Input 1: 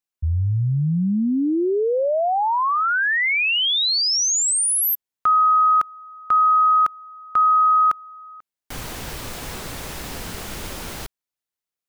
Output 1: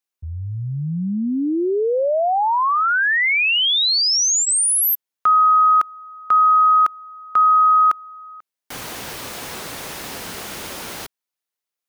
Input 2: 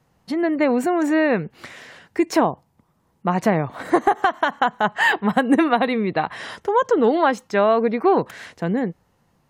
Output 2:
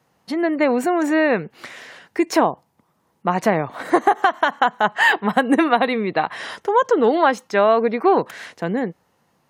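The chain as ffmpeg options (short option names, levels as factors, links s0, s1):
-af "highpass=f=280:p=1,bandreject=f=7600:w=28,volume=1.33"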